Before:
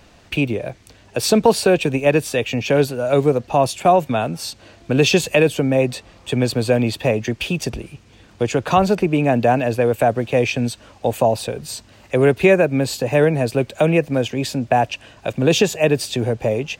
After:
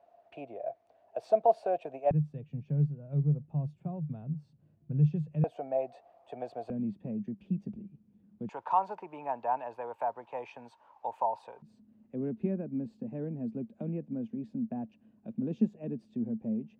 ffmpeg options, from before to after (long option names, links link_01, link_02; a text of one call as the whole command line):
ffmpeg -i in.wav -af "asetnsamples=nb_out_samples=441:pad=0,asendcmd='2.11 bandpass f 150;5.44 bandpass f 700;6.7 bandpass f 200;8.49 bandpass f 920;11.62 bandpass f 220',bandpass=frequency=680:width_type=q:width=11:csg=0" out.wav